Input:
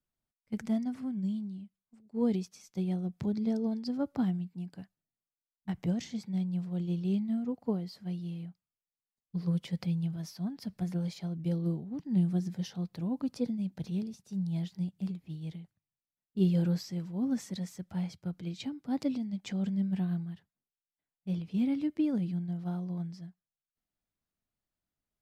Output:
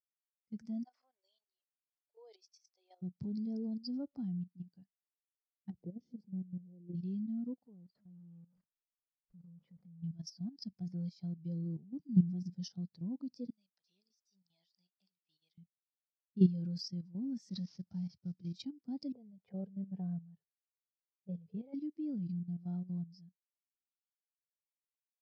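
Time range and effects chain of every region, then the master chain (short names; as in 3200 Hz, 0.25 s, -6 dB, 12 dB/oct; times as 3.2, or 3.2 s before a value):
0.84–3.02 inverse Chebyshev high-pass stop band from 210 Hz, stop band 50 dB + high shelf 5200 Hz -5 dB
5.7–6.95 EQ curve 160 Hz 0 dB, 480 Hz +9 dB, 1600 Hz -15 dB + compressor 4:1, threshold -35 dBFS
7.66–10.04 zero-crossing step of -44 dBFS + LPF 1800 Hz + level quantiser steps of 19 dB
13.5–15.58 HPF 840 Hz + compressor 8:1, threshold -57 dBFS
17.49–18.53 CVSD 32 kbps + HPF 54 Hz + low shelf 280 Hz +4 dB
19.12–21.74 EQ curve 160 Hz 0 dB, 290 Hz -17 dB, 420 Hz +9 dB, 5900 Hz -13 dB + low-pass opened by the level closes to 360 Hz, open at -36.5 dBFS
whole clip: bell 5100 Hz +14 dB 0.76 oct; level quantiser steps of 12 dB; spectral expander 1.5:1; gain +2.5 dB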